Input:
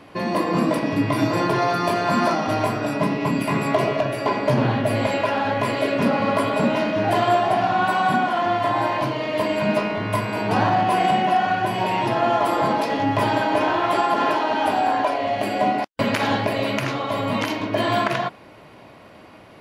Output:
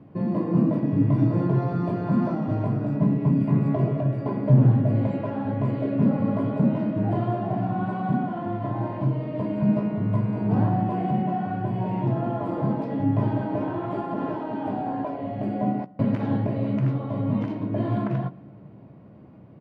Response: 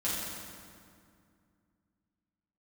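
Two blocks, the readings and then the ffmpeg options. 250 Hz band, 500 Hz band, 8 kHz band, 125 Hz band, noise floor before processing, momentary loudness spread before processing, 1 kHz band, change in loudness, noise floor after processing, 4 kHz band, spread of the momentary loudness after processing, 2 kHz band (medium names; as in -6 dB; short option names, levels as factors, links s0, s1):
+1.0 dB, -8.5 dB, under -30 dB, +6.0 dB, -46 dBFS, 5 LU, -12.0 dB, -3.5 dB, -46 dBFS, under -20 dB, 7 LU, -18.5 dB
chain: -filter_complex "[0:a]bandpass=f=140:t=q:w=1.5:csg=0,asplit=2[s0][s1];[s1]adelay=15,volume=0.224[s2];[s0][s2]amix=inputs=2:normalize=0,asplit=2[s3][s4];[1:a]atrim=start_sample=2205,adelay=18[s5];[s4][s5]afir=irnorm=-1:irlink=0,volume=0.0376[s6];[s3][s6]amix=inputs=2:normalize=0,volume=2.11"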